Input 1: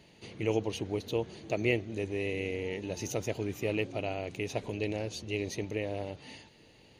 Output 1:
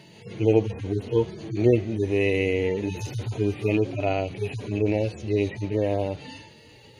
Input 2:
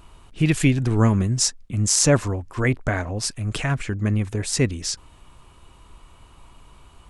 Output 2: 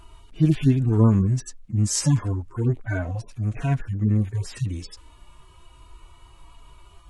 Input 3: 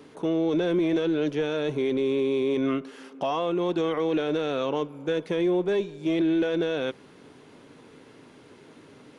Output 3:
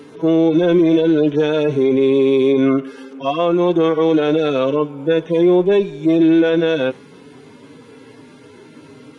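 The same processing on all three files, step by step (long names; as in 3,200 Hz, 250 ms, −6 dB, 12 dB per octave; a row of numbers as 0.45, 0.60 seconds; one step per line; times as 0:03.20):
harmonic-percussive split with one part muted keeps harmonic
normalise the peak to −6 dBFS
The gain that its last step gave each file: +11.5, +1.5, +11.0 decibels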